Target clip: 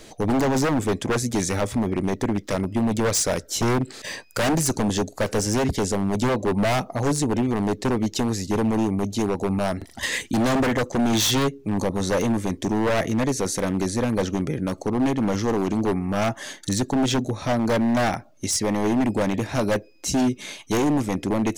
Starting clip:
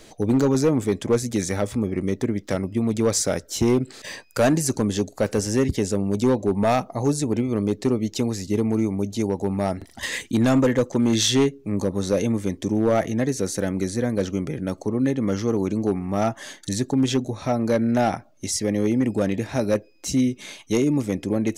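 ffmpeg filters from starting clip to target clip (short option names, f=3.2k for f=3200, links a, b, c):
-af "acontrast=26,aeval=exprs='0.224*(abs(mod(val(0)/0.224+3,4)-2)-1)':c=same,volume=-2.5dB"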